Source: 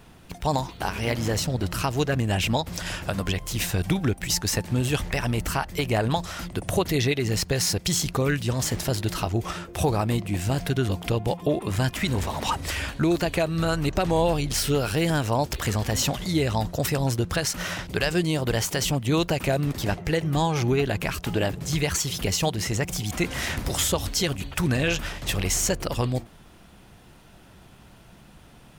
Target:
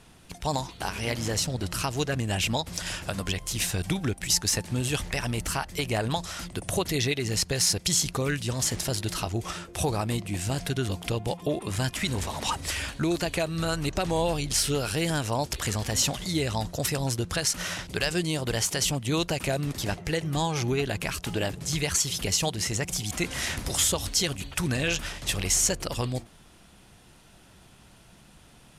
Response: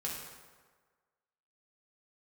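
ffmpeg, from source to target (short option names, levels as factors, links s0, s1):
-af "lowpass=f=12000:w=0.5412,lowpass=f=12000:w=1.3066,highshelf=f=3300:g=8,volume=0.596"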